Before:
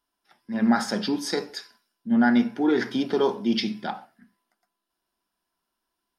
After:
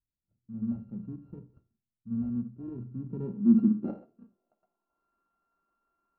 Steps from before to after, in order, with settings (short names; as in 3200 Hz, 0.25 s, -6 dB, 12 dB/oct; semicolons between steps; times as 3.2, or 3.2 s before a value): sample sorter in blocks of 32 samples; low-pass sweep 110 Hz -> 1200 Hz, 2.96–5.07